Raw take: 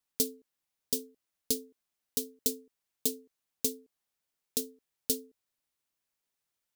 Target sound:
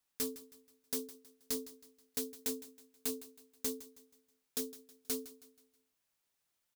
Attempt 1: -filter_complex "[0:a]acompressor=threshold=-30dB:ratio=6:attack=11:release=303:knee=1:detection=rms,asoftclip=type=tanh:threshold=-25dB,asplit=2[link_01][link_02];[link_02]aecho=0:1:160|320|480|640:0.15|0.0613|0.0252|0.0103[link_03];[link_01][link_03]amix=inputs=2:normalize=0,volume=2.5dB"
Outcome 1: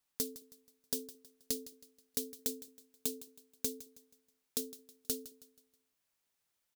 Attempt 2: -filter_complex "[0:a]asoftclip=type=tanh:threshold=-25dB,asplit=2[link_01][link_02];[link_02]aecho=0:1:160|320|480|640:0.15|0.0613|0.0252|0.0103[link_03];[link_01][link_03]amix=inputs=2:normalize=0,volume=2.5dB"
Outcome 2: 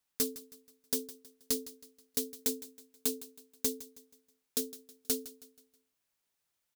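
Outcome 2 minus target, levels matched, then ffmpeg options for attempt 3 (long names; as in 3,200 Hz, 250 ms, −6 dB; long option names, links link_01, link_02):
soft clipping: distortion −6 dB
-filter_complex "[0:a]asoftclip=type=tanh:threshold=-33.5dB,asplit=2[link_01][link_02];[link_02]aecho=0:1:160|320|480|640:0.15|0.0613|0.0252|0.0103[link_03];[link_01][link_03]amix=inputs=2:normalize=0,volume=2.5dB"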